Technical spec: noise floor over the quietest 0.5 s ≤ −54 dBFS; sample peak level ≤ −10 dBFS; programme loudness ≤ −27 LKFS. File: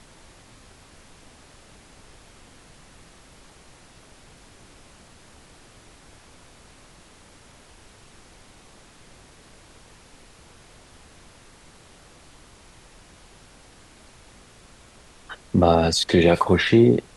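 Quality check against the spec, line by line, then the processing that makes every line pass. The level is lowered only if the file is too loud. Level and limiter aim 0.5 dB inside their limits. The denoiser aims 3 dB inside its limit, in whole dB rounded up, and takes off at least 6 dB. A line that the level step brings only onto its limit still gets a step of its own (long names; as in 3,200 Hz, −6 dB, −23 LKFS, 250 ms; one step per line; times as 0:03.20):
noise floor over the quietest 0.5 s −50 dBFS: out of spec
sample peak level −5.0 dBFS: out of spec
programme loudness −18.0 LKFS: out of spec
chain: level −9.5 dB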